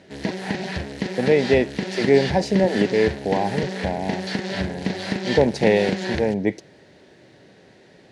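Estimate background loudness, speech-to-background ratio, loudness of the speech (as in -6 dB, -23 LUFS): -28.0 LUFS, 6.0 dB, -22.0 LUFS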